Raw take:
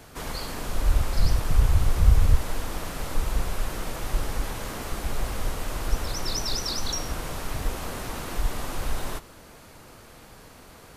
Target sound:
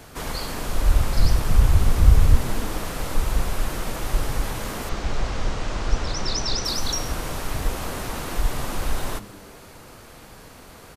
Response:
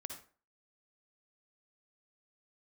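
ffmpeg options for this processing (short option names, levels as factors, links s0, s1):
-filter_complex "[0:a]asettb=1/sr,asplit=3[s0][s1][s2];[s0]atrim=end=4.894[s3];[s1]atrim=start=4.89:end=6.65,asetpts=PTS-STARTPTS,afade=t=in:d=0.004:c=qsin,afade=t=out:st=1.756:d=0.004:c=qsin,lowpass=f=6700:w=0.5412,lowpass=f=6700:w=1.3066[s4];[s2]atrim=start=6.646[s5];[s3][s4]acrossfade=d=0.004:c1=hsin:c2=qsin[s6];[s6][s5]acrossfade=d=0.004:c1=qsin:c2=hsin,asplit=2[s7][s8];[s8]asplit=5[s9][s10][s11][s12][s13];[s9]adelay=137,afreqshift=95,volume=0.075[s14];[s10]adelay=274,afreqshift=190,volume=0.0479[s15];[s11]adelay=411,afreqshift=285,volume=0.0305[s16];[s12]adelay=548,afreqshift=380,volume=0.0197[s17];[s13]adelay=685,afreqshift=475,volume=0.0126[s18];[s14][s15][s16][s17][s18]amix=inputs=5:normalize=0[s19];[s7][s19]amix=inputs=2:normalize=0,volume=1.5"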